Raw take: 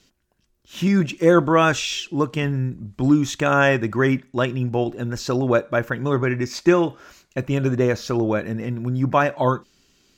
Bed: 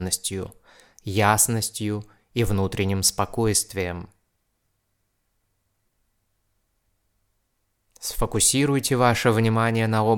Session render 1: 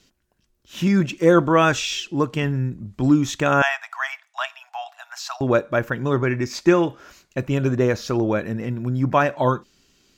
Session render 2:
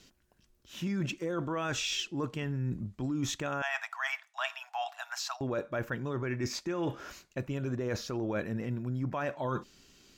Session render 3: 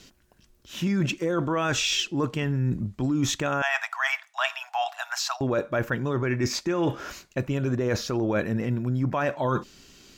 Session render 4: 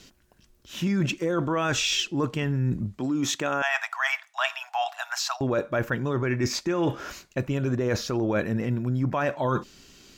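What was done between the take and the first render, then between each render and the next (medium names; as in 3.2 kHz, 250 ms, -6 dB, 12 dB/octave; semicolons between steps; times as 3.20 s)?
3.62–5.41 s: Chebyshev high-pass 660 Hz, order 8
peak limiter -13.5 dBFS, peak gain reduction 10.5 dB; reverse; compression 6:1, threshold -31 dBFS, peak gain reduction 13 dB; reverse
trim +8 dB
2.98–4.15 s: high-pass 200 Hz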